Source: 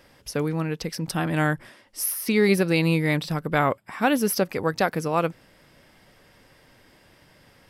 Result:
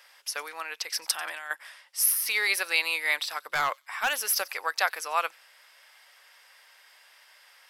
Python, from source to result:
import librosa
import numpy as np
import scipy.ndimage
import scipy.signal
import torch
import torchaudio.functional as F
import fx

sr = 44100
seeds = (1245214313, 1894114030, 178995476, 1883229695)

y = fx.over_compress(x, sr, threshold_db=-27.0, ratio=-0.5, at=(0.95, 1.51))
y = scipy.signal.sosfilt(scipy.signal.bessel(4, 1200.0, 'highpass', norm='mag', fs=sr, output='sos'), y)
y = fx.clip_hard(y, sr, threshold_db=-23.5, at=(3.51, 4.48))
y = fx.echo_wet_highpass(y, sr, ms=92, feedback_pct=31, hz=4200.0, wet_db=-19.0)
y = y * librosa.db_to_amplitude(3.5)